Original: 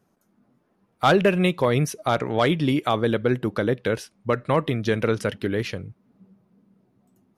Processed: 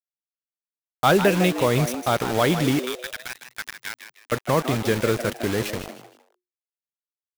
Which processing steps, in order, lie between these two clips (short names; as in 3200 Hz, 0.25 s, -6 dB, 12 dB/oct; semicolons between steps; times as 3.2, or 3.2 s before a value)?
2.84–4.32 elliptic band-pass 1500–5200 Hz, stop band 40 dB; bit-crush 5-bit; frequency-shifting echo 0.155 s, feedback 31%, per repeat +120 Hz, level -10 dB